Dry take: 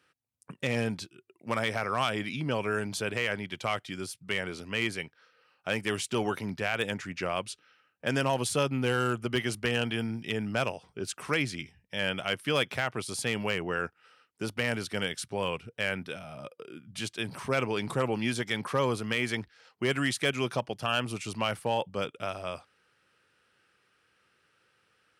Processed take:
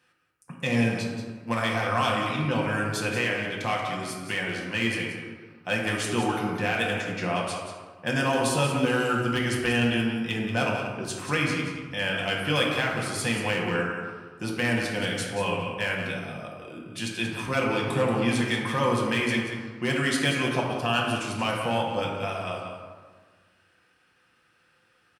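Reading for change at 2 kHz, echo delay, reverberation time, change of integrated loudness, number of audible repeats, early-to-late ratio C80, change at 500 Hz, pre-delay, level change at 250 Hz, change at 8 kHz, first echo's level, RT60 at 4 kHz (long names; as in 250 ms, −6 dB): +5.0 dB, 182 ms, 1.5 s, +4.5 dB, 1, 3.0 dB, +3.0 dB, 4 ms, +6.0 dB, +3.0 dB, −8.5 dB, 0.75 s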